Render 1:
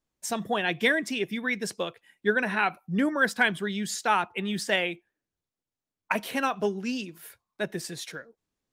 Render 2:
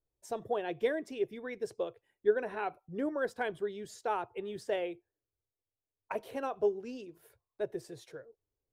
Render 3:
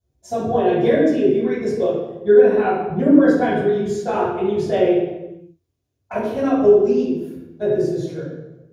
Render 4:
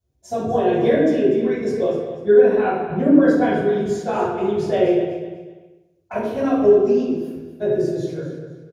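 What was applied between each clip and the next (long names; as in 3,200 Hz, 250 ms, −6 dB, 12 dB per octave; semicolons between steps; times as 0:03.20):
drawn EQ curve 120 Hz 0 dB, 190 Hz −19 dB, 420 Hz 0 dB, 1,900 Hz −18 dB
convolution reverb RT60 1.1 s, pre-delay 3 ms, DRR −13 dB; level −1 dB
repeating echo 246 ms, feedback 30%, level −12 dB; level −1 dB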